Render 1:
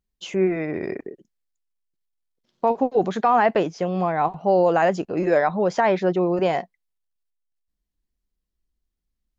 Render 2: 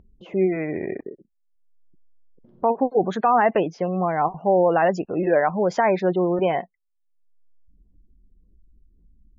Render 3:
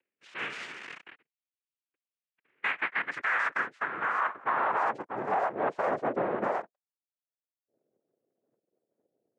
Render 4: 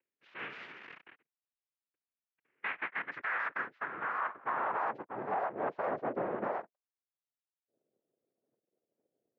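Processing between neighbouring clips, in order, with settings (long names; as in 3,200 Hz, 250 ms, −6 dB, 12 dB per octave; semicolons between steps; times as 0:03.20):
gate on every frequency bin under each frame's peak −30 dB strong; low-pass that shuts in the quiet parts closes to 410 Hz, open at −18 dBFS; upward compression, threshold −34 dBFS
cochlear-implant simulation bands 3; band-pass filter sweep 2,700 Hz → 630 Hz, 0:02.36–0:05.65; brickwall limiter −19 dBFS, peak gain reduction 9.5 dB
high-frequency loss of the air 250 metres; level −4.5 dB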